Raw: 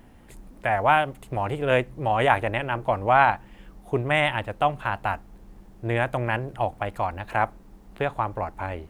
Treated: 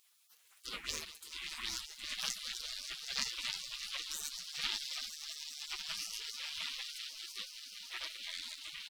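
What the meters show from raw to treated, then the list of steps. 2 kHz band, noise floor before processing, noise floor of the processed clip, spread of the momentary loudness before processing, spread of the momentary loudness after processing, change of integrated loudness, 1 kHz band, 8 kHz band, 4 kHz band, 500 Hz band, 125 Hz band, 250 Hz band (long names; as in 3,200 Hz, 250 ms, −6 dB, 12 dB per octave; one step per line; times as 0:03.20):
−18.0 dB, −50 dBFS, −67 dBFS, 10 LU, 7 LU, −15.0 dB, −32.0 dB, can't be measured, +1.0 dB, −37.0 dB, below −35 dB, −29.0 dB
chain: phase distortion by the signal itself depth 0.17 ms
high-pass filter 77 Hz 12 dB per octave
comb filter 7.1 ms, depth 57%
far-end echo of a speakerphone 90 ms, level −20 dB
delay with pitch and tempo change per echo 456 ms, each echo −5 semitones, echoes 3
on a send: echo that builds up and dies away 191 ms, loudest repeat 5, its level −13.5 dB
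on the sum: gate on every frequency bin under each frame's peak −30 dB weak
level +1.5 dB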